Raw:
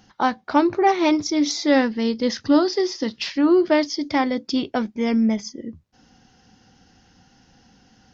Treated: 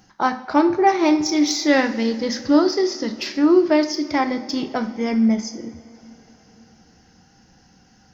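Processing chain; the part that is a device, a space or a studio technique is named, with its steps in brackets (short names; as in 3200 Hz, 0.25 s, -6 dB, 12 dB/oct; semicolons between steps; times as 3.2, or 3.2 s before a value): 1.25–2.03 bell 2700 Hz +5 dB 1.5 oct; exciter from parts (in parallel at -4.5 dB: HPF 3100 Hz 24 dB/oct + soft clip -20.5 dBFS, distortion -16 dB); on the sum: two-slope reverb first 0.48 s, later 4.2 s, from -18 dB, DRR 6.5 dB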